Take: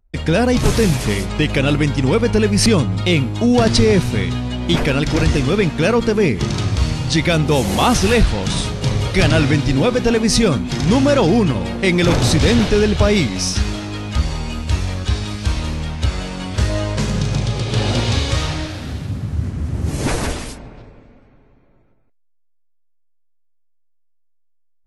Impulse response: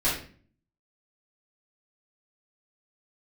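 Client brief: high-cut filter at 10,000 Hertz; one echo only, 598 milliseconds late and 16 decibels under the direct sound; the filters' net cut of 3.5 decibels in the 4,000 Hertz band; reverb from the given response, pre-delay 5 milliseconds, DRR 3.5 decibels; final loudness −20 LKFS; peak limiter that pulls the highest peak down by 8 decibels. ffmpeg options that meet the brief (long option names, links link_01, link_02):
-filter_complex "[0:a]lowpass=10000,equalizer=frequency=4000:width_type=o:gain=-4.5,alimiter=limit=-13dB:level=0:latency=1,aecho=1:1:598:0.158,asplit=2[link_01][link_02];[1:a]atrim=start_sample=2205,adelay=5[link_03];[link_02][link_03]afir=irnorm=-1:irlink=0,volume=-15dB[link_04];[link_01][link_04]amix=inputs=2:normalize=0"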